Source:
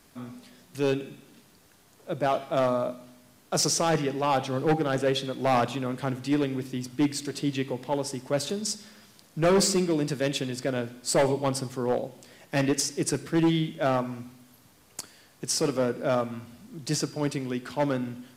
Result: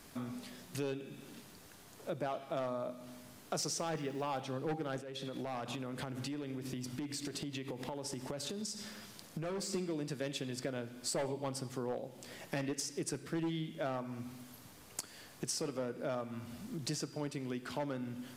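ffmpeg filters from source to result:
ffmpeg -i in.wav -filter_complex "[0:a]asettb=1/sr,asplit=3[link_01][link_02][link_03];[link_01]atrim=end=3.794[link_04];[link_02]atrim=start=3.79:end=4.4,asetpts=PTS-STARTPTS,afade=type=in:duration=0.004:curve=qsin,afade=type=out:start_time=0.606:duration=0.004:curve=qsin,aeval=exprs='val(0)*gte(abs(val(0)),0.00631)':channel_layout=same[link_05];[link_03]atrim=start=4.396[link_06];[link_04][link_05]acrossfade=duration=0.004:curve1=hsin:curve2=qsin[link_07];[link_07][link_06]acrossfade=duration=0.004:curve1=qsin:curve2=hsin,asplit=3[link_08][link_09][link_10];[link_08]afade=type=out:start_time=5:duration=0.02[link_11];[link_09]acompressor=threshold=-35dB:ratio=12:attack=3.2:release=140:knee=1:detection=peak,afade=type=in:start_time=5:duration=0.02,afade=type=out:start_time=9.73:duration=0.02[link_12];[link_10]afade=type=in:start_time=9.73:duration=0.02[link_13];[link_11][link_12][link_13]amix=inputs=3:normalize=0,acompressor=threshold=-40dB:ratio=4,volume=2dB" out.wav

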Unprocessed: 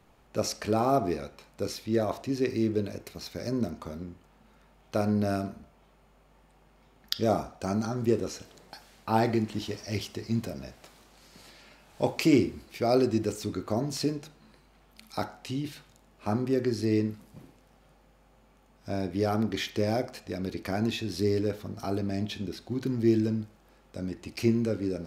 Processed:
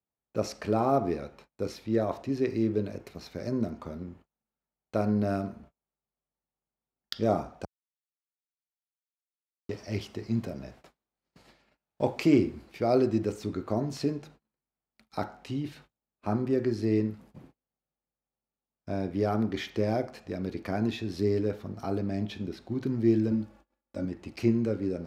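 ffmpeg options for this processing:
ffmpeg -i in.wav -filter_complex "[0:a]asettb=1/sr,asplit=3[link_01][link_02][link_03];[link_01]atrim=end=23.314[link_04];[link_02]atrim=start=23.31:end=24.05,asetpts=PTS-STARTPTS,afade=type=in:duration=0.004:curve=qsin,afade=type=out:start_time=0.736:duration=0.004:curve=qsin,aecho=1:1:3.5:0.99,atrim=end_sample=32634[link_05];[link_03]atrim=start=24.046[link_06];[link_04][link_05]acrossfade=duration=0.004:curve1=hsin:curve2=qsin[link_07];[link_07][link_06]acrossfade=duration=0.004:curve1=qsin:curve2=hsin,asplit=3[link_08][link_09][link_10];[link_08]atrim=end=7.65,asetpts=PTS-STARTPTS,afade=type=out:start_time=7.646:duration=0.004:curve=hsin[link_11];[link_09]atrim=start=7.65:end=9.69,asetpts=PTS-STARTPTS,volume=0[link_12];[link_10]atrim=start=9.69,asetpts=PTS-STARTPTS,afade=type=in:duration=0.004:curve=hsin[link_13];[link_11][link_12][link_13]concat=n=3:v=0:a=1,agate=range=-33dB:threshold=-51dB:ratio=16:detection=peak,highpass=53,highshelf=frequency=3600:gain=-11" out.wav

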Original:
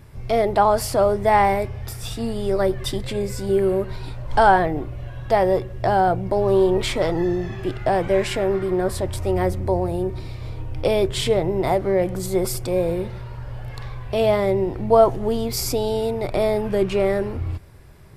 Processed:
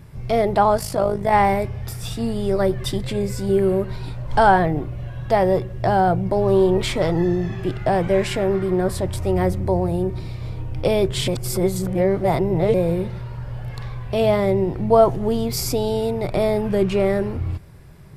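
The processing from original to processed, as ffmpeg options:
ffmpeg -i in.wav -filter_complex "[0:a]asplit=3[link_01][link_02][link_03];[link_01]afade=type=out:start_time=0.76:duration=0.02[link_04];[link_02]tremolo=f=52:d=0.667,afade=type=in:start_time=0.76:duration=0.02,afade=type=out:start_time=1.31:duration=0.02[link_05];[link_03]afade=type=in:start_time=1.31:duration=0.02[link_06];[link_04][link_05][link_06]amix=inputs=3:normalize=0,asplit=3[link_07][link_08][link_09];[link_07]atrim=end=11.282[link_10];[link_08]atrim=start=11.278:end=12.742,asetpts=PTS-STARTPTS,areverse[link_11];[link_09]atrim=start=12.738[link_12];[link_10][link_11]acrossfade=duration=0.004:curve1=hsin:curve2=hsin[link_13];[link_13][link_12]acrossfade=duration=0.004:curve1=hsin:curve2=hsin,equalizer=frequency=160:width_type=o:width=0.75:gain=7.5" out.wav

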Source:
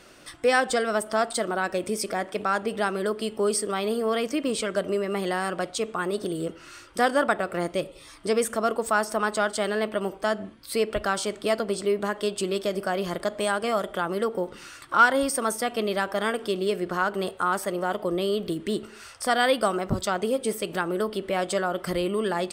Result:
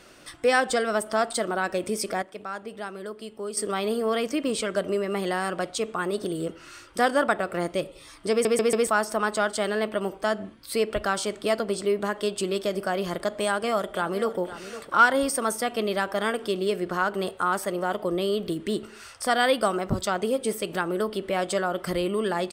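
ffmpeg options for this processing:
ffmpeg -i in.wav -filter_complex "[0:a]asplit=2[link_01][link_02];[link_02]afade=type=in:start_time=13.44:duration=0.01,afade=type=out:start_time=14.38:duration=0.01,aecho=0:1:510|1020|1530:0.211349|0.0739721|0.0258902[link_03];[link_01][link_03]amix=inputs=2:normalize=0,asplit=7[link_04][link_05][link_06][link_07][link_08][link_09][link_10];[link_04]atrim=end=2.222[link_11];[link_05]atrim=start=2.218:end=3.572,asetpts=PTS-STARTPTS,volume=-9.5dB[link_12];[link_06]atrim=start=3.568:end=8.452[link_13];[link_07]atrim=start=8.308:end=8.452[link_14];[link_08]atrim=start=8.308:end=8.452[link_15];[link_09]atrim=start=8.308:end=8.452[link_16];[link_10]atrim=start=8.868[link_17];[link_11][link_12]acrossfade=duration=0.004:curve1=hsin:curve2=hsin[link_18];[link_18][link_13]acrossfade=duration=0.004:curve1=hsin:curve2=hsin[link_19];[link_19][link_14]acrossfade=duration=0.004:curve1=hsin:curve2=hsin[link_20];[link_20][link_15]acrossfade=duration=0.004:curve1=hsin:curve2=hsin[link_21];[link_21][link_16]acrossfade=duration=0.004:curve1=hsin:curve2=hsin[link_22];[link_22][link_17]acrossfade=duration=0.004:curve1=hsin:curve2=hsin" out.wav

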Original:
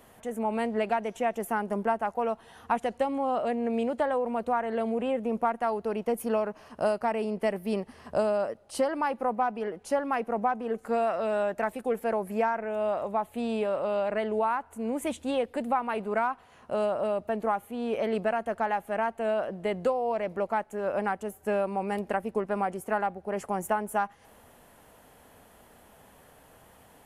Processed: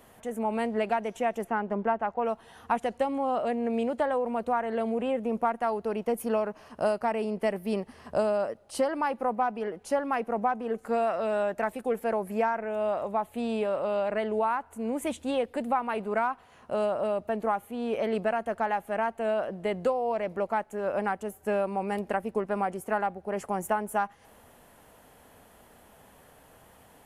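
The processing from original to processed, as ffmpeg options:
ffmpeg -i in.wav -filter_complex "[0:a]asplit=3[link_01][link_02][link_03];[link_01]afade=type=out:start_time=1.43:duration=0.02[link_04];[link_02]lowpass=3200,afade=type=in:start_time=1.43:duration=0.02,afade=type=out:start_time=2.24:duration=0.02[link_05];[link_03]afade=type=in:start_time=2.24:duration=0.02[link_06];[link_04][link_05][link_06]amix=inputs=3:normalize=0" out.wav

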